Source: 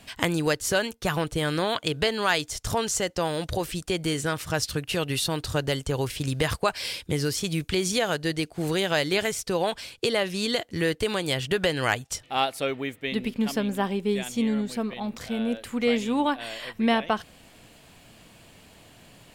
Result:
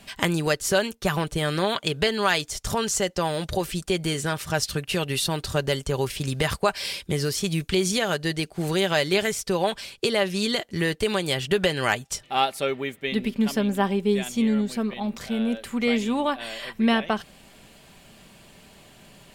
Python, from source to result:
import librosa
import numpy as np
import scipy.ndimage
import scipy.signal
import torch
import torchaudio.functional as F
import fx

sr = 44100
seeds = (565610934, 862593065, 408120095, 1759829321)

y = x + 0.37 * np.pad(x, (int(5.1 * sr / 1000.0), 0))[:len(x)]
y = y * librosa.db_to_amplitude(1.0)